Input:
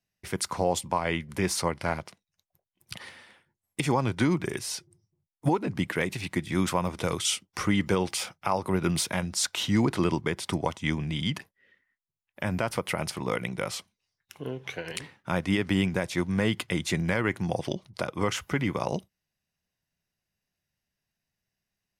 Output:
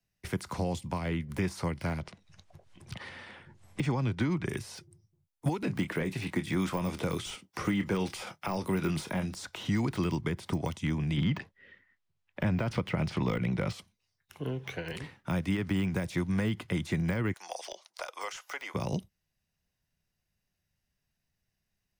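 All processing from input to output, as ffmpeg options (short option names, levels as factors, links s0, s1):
-filter_complex "[0:a]asettb=1/sr,asplit=3[s0][s1][s2];[s0]atrim=end=2.014[s3];[s1]atrim=start=2.01:end=4.48,asetpts=PTS-STARTPTS,afade=t=in:d=0.004:c=qsin,afade=t=out:st=2.466:d=0.004:c=qsin,aemphasis=mode=reproduction:type=50kf,acompressor=mode=upward:threshold=0.0126:ratio=2.5:attack=3.2:release=140:knee=2.83:detection=peak,lowpass=f=10000:w=0.5412,lowpass=f=10000:w=1.3066[s4];[s2]atrim=start=4.476[s5];[s3][s4]acrossfade=d=0.004:c1=hsin:c2=qsin[s6];[s6][s5]acrossfade=d=0.004:c1=qsin:c2=hsin,asettb=1/sr,asplit=3[s7][s8][s9];[s7]atrim=end=5.624[s10];[s8]atrim=start=5.62:end=9.34,asetpts=PTS-STARTPTS,afade=t=in:d=0.004:c=qsin,afade=t=out:st=3.716:d=0.004:c=qsin,highpass=f=360:p=1,asplit=2[s11][s12];[s12]adelay=26,volume=0.224[s13];[s11][s13]amix=inputs=2:normalize=0,atrim=end_sample=164052,acontrast=48[s14];[s9]atrim=start=9.336[s15];[s10][s14]acrossfade=d=0.004:c1=hsin:c2=qsin[s16];[s16][s15]acrossfade=d=0.004:c1=qsin:c2=hsin,asettb=1/sr,asplit=3[s17][s18][s19];[s17]atrim=end=11.174[s20];[s18]atrim=start=11.17:end=13.73,asetpts=PTS-STARTPTS,afade=t=in:d=0.004:c=qsin,afade=t=out:st=2.556:d=0.004:c=qsin,lowpass=4500,acontrast=85[s21];[s19]atrim=start=13.726[s22];[s20][s21]acrossfade=d=0.004:c1=hsin:c2=qsin[s23];[s23][s22]acrossfade=d=0.004:c1=qsin:c2=hsin,asettb=1/sr,asplit=3[s24][s25][s26];[s24]atrim=end=17.334[s27];[s25]atrim=start=17.33:end=18.74,asetpts=PTS-STARTPTS,afade=t=in:d=0.004:c=qsin,afade=t=out:st=1.406:d=0.004:c=qsin,highpass=f=660:w=0.5412,highpass=f=660:w=1.3066,equalizer=f=6100:t=o:w=1:g=8.5[s28];[s26]atrim=start=18.736[s29];[s27][s28]acrossfade=d=0.004:c1=hsin:c2=qsin[s30];[s30][s29]acrossfade=d=0.004:c1=qsin:c2=hsin,deesser=1,lowshelf=f=110:g=10,acrossover=split=98|310|670|1800[s31][s32][s33][s34][s35];[s31]acompressor=threshold=0.00631:ratio=4[s36];[s32]acompressor=threshold=0.0355:ratio=4[s37];[s33]acompressor=threshold=0.00891:ratio=4[s38];[s34]acompressor=threshold=0.00708:ratio=4[s39];[s35]acompressor=threshold=0.00891:ratio=4[s40];[s36][s37][s38][s39][s40]amix=inputs=5:normalize=0"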